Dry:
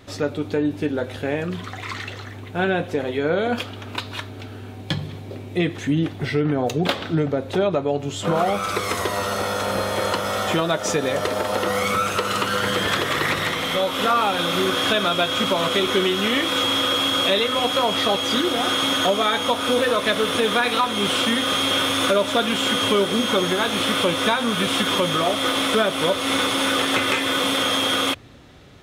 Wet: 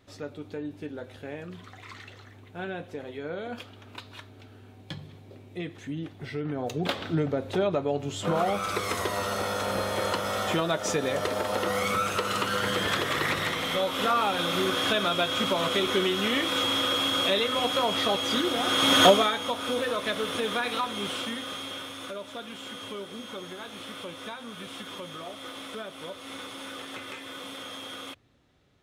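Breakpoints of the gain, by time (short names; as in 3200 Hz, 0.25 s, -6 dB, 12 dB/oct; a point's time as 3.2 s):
6.16 s -14 dB
7.08 s -5.5 dB
18.65 s -5.5 dB
19.07 s +4 dB
19.36 s -9 dB
20.86 s -9 dB
21.97 s -19 dB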